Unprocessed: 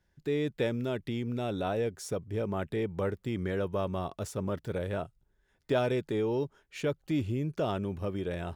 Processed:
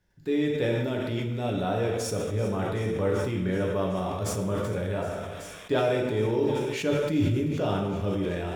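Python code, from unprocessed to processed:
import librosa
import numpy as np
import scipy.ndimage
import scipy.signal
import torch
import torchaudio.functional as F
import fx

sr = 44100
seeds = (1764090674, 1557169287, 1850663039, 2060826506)

p1 = x + fx.echo_wet_highpass(x, sr, ms=382, feedback_pct=84, hz=2300.0, wet_db=-13, dry=0)
p2 = fx.rev_plate(p1, sr, seeds[0], rt60_s=1.1, hf_ratio=0.75, predelay_ms=0, drr_db=-1.0)
y = fx.sustainer(p2, sr, db_per_s=25.0)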